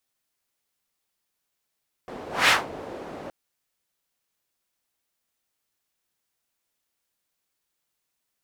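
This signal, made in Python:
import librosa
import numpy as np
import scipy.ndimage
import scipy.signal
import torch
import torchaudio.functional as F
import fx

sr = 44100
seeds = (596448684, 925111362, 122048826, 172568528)

y = fx.whoosh(sr, seeds[0], length_s=1.22, peak_s=0.41, rise_s=0.21, fall_s=0.19, ends_hz=490.0, peak_hz=2200.0, q=1.2, swell_db=20.5)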